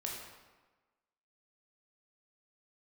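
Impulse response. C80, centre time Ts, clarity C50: 4.0 dB, 64 ms, 2.0 dB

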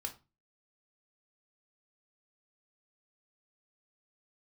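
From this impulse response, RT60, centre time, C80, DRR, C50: 0.30 s, 9 ms, 21.0 dB, 3.5 dB, 13.5 dB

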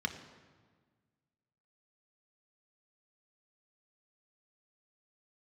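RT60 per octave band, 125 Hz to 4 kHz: 2.0, 1.9, 1.6, 1.5, 1.3, 1.1 s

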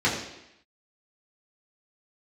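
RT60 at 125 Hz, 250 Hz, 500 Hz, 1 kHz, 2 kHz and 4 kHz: 0.70, 0.85, 0.80, 0.85, 0.90, 0.85 s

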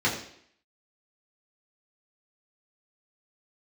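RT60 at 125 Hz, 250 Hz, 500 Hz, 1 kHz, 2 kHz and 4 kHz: 0.55, 0.65, 0.65, 0.65, 0.65, 0.65 s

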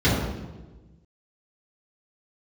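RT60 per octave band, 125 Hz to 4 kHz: 1.7, 1.5, 1.4, 1.1, 0.90, 0.85 s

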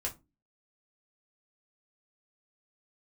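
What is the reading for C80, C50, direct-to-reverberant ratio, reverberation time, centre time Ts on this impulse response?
25.0 dB, 16.5 dB, -2.0 dB, 0.25 s, 14 ms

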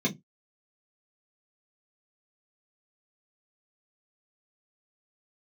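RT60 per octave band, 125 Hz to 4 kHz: 0.20, 0.25, 0.20, 0.15, 0.15, 0.10 s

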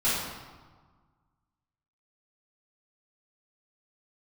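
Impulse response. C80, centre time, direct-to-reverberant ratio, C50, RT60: 2.0 dB, 87 ms, -12.5 dB, -1.0 dB, 1.5 s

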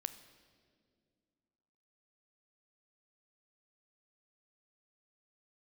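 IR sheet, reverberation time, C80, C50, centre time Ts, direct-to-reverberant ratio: 2.1 s, 14.0 dB, 12.5 dB, 10 ms, 11.0 dB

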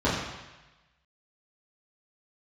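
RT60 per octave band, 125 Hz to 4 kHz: 1.2, 0.95, 1.0, 1.1, 1.2, 1.1 s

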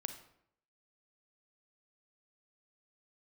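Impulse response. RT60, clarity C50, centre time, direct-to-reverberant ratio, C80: 0.70 s, 9.5 dB, 12 ms, 8.0 dB, 12.5 dB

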